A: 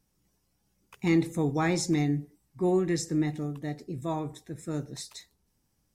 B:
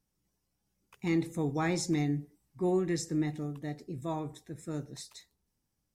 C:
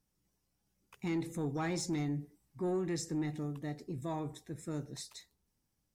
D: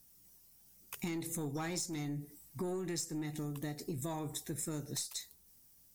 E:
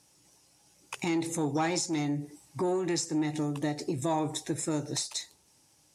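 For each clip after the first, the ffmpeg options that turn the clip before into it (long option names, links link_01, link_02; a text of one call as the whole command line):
ffmpeg -i in.wav -af "dynaudnorm=framelen=210:gausssize=11:maxgain=4dB,volume=-7.5dB" out.wav
ffmpeg -i in.wav -filter_complex "[0:a]asplit=2[link_01][link_02];[link_02]alimiter=level_in=6.5dB:limit=-24dB:level=0:latency=1:release=113,volume=-6.5dB,volume=1dB[link_03];[link_01][link_03]amix=inputs=2:normalize=0,asoftclip=type=tanh:threshold=-20.5dB,volume=-6.5dB" out.wav
ffmpeg -i in.wav -af "aemphasis=mode=production:type=75fm,aeval=exprs='0.141*(cos(1*acos(clip(val(0)/0.141,-1,1)))-cos(1*PI/2))+0.0158*(cos(2*acos(clip(val(0)/0.141,-1,1)))-cos(2*PI/2))+0.01*(cos(4*acos(clip(val(0)/0.141,-1,1)))-cos(4*PI/2))+0.00447*(cos(6*acos(clip(val(0)/0.141,-1,1)))-cos(6*PI/2))+0.00355*(cos(8*acos(clip(val(0)/0.141,-1,1)))-cos(8*PI/2))':channel_layout=same,acompressor=threshold=-43dB:ratio=10,volume=7dB" out.wav
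ffmpeg -i in.wav -af "highpass=110,equalizer=frequency=210:width_type=q:width=4:gain=-9,equalizer=frequency=310:width_type=q:width=4:gain=4,equalizer=frequency=590:width_type=q:width=4:gain=5,equalizer=frequency=860:width_type=q:width=4:gain=7,equalizer=frequency=2600:width_type=q:width=4:gain=3,equalizer=frequency=8100:width_type=q:width=4:gain=-3,lowpass=frequency=9000:width=0.5412,lowpass=frequency=9000:width=1.3066,volume=8dB" out.wav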